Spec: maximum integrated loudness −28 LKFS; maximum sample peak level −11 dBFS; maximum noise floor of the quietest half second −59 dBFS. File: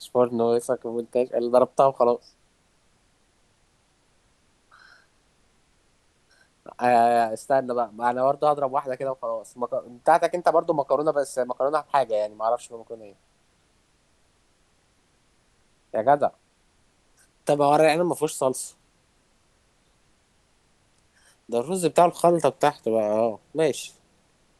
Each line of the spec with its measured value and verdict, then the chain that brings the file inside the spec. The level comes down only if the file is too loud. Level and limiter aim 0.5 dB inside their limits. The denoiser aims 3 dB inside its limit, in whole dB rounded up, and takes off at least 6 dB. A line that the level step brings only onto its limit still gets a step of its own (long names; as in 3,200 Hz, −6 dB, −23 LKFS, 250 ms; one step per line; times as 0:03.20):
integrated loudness −23.5 LKFS: out of spec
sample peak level −5.0 dBFS: out of spec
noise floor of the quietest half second −64 dBFS: in spec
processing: level −5 dB
brickwall limiter −11.5 dBFS